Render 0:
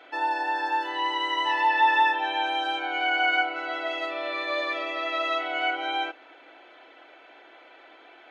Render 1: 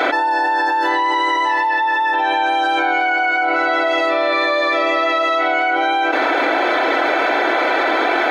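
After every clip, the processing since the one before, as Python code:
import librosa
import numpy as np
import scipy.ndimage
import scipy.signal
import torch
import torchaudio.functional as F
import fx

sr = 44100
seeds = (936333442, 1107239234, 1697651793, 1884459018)

y = fx.peak_eq(x, sr, hz=2900.0, db=-11.5, octaves=0.41)
y = fx.env_flatten(y, sr, amount_pct=100)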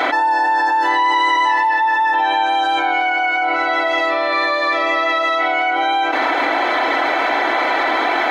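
y = fx.peak_eq(x, sr, hz=370.0, db=-3.0, octaves=0.71)
y = y + 0.33 * np.pad(y, (int(1.0 * sr / 1000.0), 0))[:len(y)]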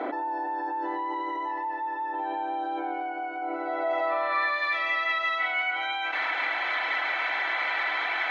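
y = fx.filter_sweep_bandpass(x, sr, from_hz=340.0, to_hz=2300.0, start_s=3.59, end_s=4.67, q=1.2)
y = F.gain(torch.from_numpy(y), -6.0).numpy()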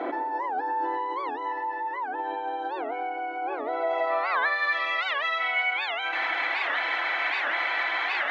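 y = fx.room_shoebox(x, sr, seeds[0], volume_m3=1100.0, walls='mixed', distance_m=0.83)
y = fx.record_warp(y, sr, rpm=78.0, depth_cents=250.0)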